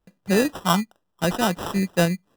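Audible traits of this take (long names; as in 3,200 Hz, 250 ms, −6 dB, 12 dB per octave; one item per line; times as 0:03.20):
aliases and images of a low sample rate 2,200 Hz, jitter 0%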